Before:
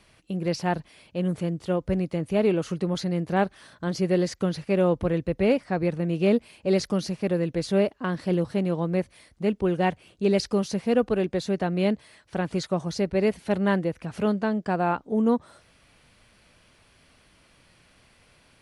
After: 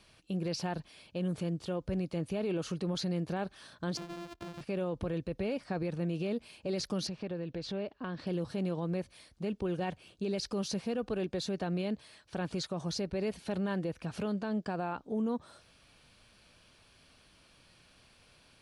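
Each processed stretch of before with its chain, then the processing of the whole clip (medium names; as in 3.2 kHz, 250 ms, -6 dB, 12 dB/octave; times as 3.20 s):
3.97–4.61 s: sorted samples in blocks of 128 samples + low-pass 2.8 kHz 6 dB/octave + compression 16:1, threshold -35 dBFS
7.07–8.27 s: low-pass 4.2 kHz + compression 3:1, threshold -32 dBFS
whole clip: peaking EQ 4.3 kHz +4.5 dB 1.2 oct; band-stop 2 kHz, Q 11; peak limiter -22 dBFS; trim -4.5 dB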